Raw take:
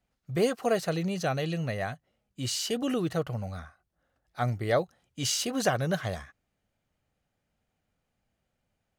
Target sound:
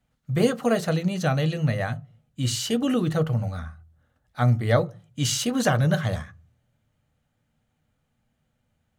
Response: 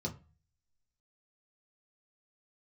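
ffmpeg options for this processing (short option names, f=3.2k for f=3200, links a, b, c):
-filter_complex "[0:a]asplit=2[a][b];[1:a]atrim=start_sample=2205,highshelf=f=12k:g=12[c];[b][c]afir=irnorm=-1:irlink=0,volume=-11dB[d];[a][d]amix=inputs=2:normalize=0,volume=4.5dB"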